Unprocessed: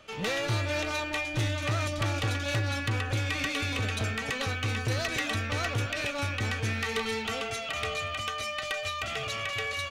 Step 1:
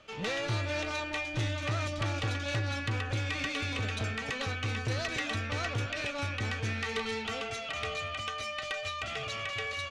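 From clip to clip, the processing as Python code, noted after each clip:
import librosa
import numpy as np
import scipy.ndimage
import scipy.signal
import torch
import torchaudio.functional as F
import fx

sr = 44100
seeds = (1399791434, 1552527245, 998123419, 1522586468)

y = scipy.signal.sosfilt(scipy.signal.butter(2, 7300.0, 'lowpass', fs=sr, output='sos'), x)
y = y * librosa.db_to_amplitude(-3.0)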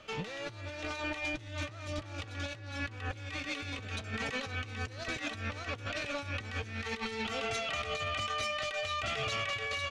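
y = fx.over_compress(x, sr, threshold_db=-37.0, ratio=-0.5)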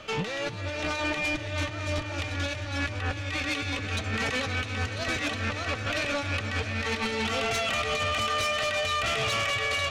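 y = fx.echo_heads(x, sr, ms=332, heads='all three', feedback_pct=41, wet_db=-15.5)
y = fx.fold_sine(y, sr, drive_db=7, ceiling_db=-22.0)
y = y * librosa.db_to_amplitude(-1.5)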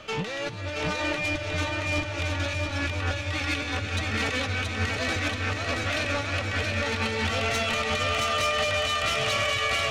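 y = fx.echo_feedback(x, sr, ms=676, feedback_pct=39, wet_db=-3.0)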